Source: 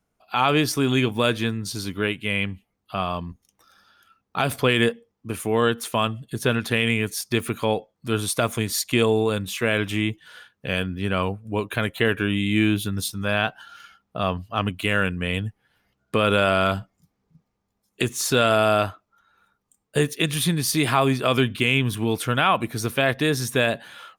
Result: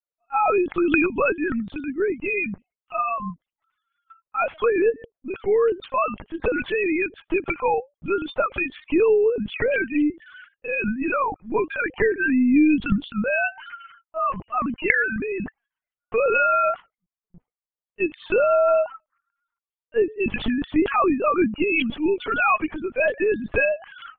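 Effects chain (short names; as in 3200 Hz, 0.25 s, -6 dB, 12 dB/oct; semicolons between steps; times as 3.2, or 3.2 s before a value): sine-wave speech; gate with hold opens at -42 dBFS; in parallel at +2 dB: limiter -17.5 dBFS, peak gain reduction 9.5 dB; on the sum: LPC vocoder at 8 kHz pitch kept; gain -4.5 dB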